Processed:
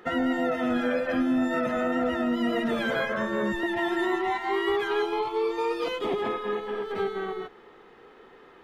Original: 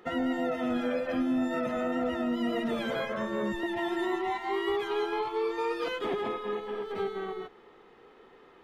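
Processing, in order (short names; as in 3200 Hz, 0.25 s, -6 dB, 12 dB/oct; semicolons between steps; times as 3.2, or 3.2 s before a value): bell 1600 Hz +6 dB 0.39 oct, from 5.02 s -8 dB, from 6.22 s +3.5 dB; gain +3.5 dB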